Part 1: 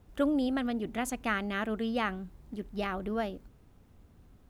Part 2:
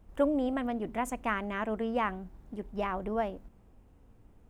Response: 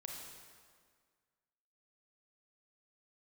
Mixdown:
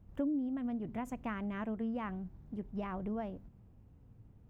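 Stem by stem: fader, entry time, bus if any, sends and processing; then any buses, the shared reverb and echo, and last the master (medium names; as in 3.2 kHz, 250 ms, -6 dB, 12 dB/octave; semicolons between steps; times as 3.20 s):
-3.0 dB, 0.00 s, no send, spectral contrast expander 4:1
-8.0 dB, 0.00 s, no send, peaking EQ 9.2 kHz -7.5 dB 0.62 oct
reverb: none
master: peaking EQ 120 Hz +15 dB 1.7 oct; compression 5:1, threshold -34 dBFS, peak gain reduction 16 dB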